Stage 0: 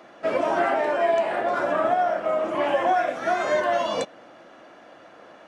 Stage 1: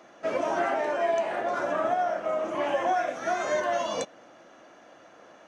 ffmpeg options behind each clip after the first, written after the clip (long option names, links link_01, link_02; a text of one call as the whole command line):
ffmpeg -i in.wav -af "equalizer=frequency=6200:width=4.8:gain=10.5,volume=-4.5dB" out.wav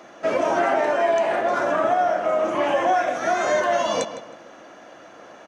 ffmpeg -i in.wav -filter_complex "[0:a]asplit=2[link_01][link_02];[link_02]alimiter=limit=-22.5dB:level=0:latency=1,volume=-1dB[link_03];[link_01][link_03]amix=inputs=2:normalize=0,asplit=2[link_04][link_05];[link_05]adelay=158,lowpass=frequency=3800:poles=1,volume=-11dB,asplit=2[link_06][link_07];[link_07]adelay=158,lowpass=frequency=3800:poles=1,volume=0.35,asplit=2[link_08][link_09];[link_09]adelay=158,lowpass=frequency=3800:poles=1,volume=0.35,asplit=2[link_10][link_11];[link_11]adelay=158,lowpass=frequency=3800:poles=1,volume=0.35[link_12];[link_04][link_06][link_08][link_10][link_12]amix=inputs=5:normalize=0,volume=2dB" out.wav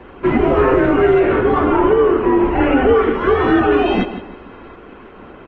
ffmpeg -i in.wav -af "highpass=frequency=250:width_type=q:width=0.5412,highpass=frequency=250:width_type=q:width=1.307,lowpass=frequency=3500:width_type=q:width=0.5176,lowpass=frequency=3500:width_type=q:width=0.7071,lowpass=frequency=3500:width_type=q:width=1.932,afreqshift=-280,volume=7.5dB" -ar 48000 -c:a libopus -b:a 20k out.opus